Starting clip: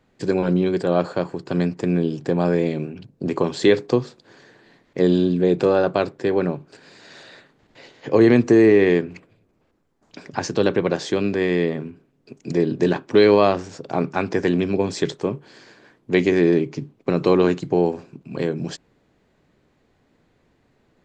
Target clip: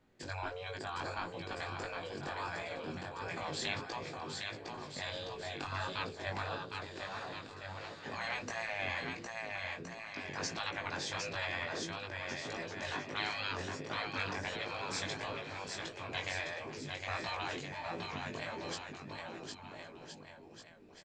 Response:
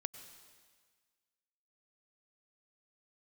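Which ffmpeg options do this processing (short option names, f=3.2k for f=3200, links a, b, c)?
-af "afftfilt=real='re*lt(hypot(re,im),0.178)':imag='im*lt(hypot(re,im),0.178)':win_size=1024:overlap=0.75,aecho=1:1:760|1368|1854|2244|2555:0.631|0.398|0.251|0.158|0.1,flanger=delay=17.5:depth=3:speed=1.5,volume=-4.5dB"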